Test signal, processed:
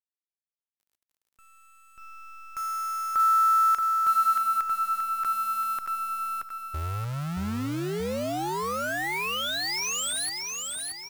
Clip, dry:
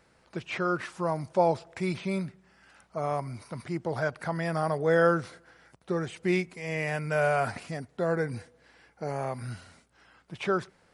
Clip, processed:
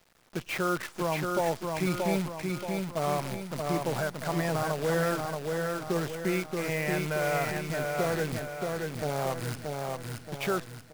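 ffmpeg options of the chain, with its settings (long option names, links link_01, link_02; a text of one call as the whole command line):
ffmpeg -i in.wav -af "alimiter=limit=-20dB:level=0:latency=1:release=315,acrusher=bits=7:dc=4:mix=0:aa=0.000001,aecho=1:1:628|1256|1884|2512|3140|3768:0.668|0.314|0.148|0.0694|0.0326|0.0153,volume=1dB" out.wav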